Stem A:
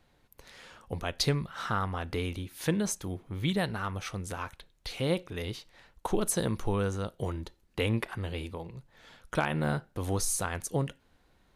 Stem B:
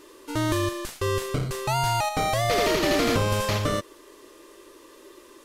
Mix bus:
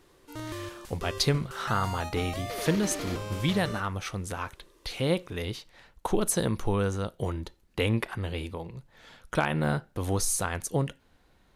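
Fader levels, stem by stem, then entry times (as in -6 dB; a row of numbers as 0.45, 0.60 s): +2.5, -13.0 dB; 0.00, 0.00 s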